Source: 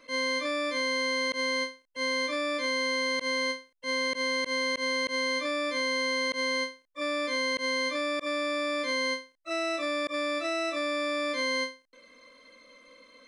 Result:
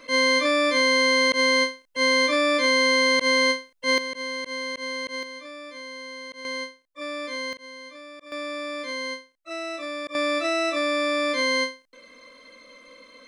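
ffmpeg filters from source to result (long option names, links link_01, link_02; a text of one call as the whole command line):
ffmpeg -i in.wav -af "asetnsamples=nb_out_samples=441:pad=0,asendcmd='3.98 volume volume -2dB;5.23 volume volume -9.5dB;6.45 volume volume -2dB;7.53 volume volume -12.5dB;8.32 volume volume -2dB;10.15 volume volume 6dB',volume=9dB" out.wav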